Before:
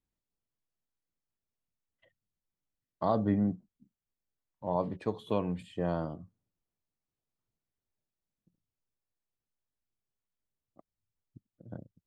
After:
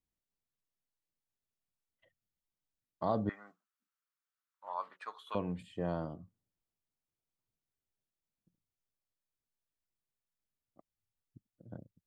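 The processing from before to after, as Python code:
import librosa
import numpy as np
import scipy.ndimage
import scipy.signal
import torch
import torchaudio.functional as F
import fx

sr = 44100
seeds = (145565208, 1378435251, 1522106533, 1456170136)

y = fx.highpass_res(x, sr, hz=1300.0, q=4.9, at=(3.29, 5.35))
y = y * librosa.db_to_amplitude(-4.0)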